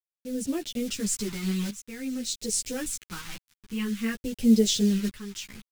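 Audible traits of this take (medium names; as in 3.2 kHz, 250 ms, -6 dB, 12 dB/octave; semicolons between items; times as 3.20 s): a quantiser's noise floor 6-bit, dither none; phasing stages 2, 0.5 Hz, lowest notch 550–1100 Hz; tremolo saw up 0.59 Hz, depth 80%; a shimmering, thickened sound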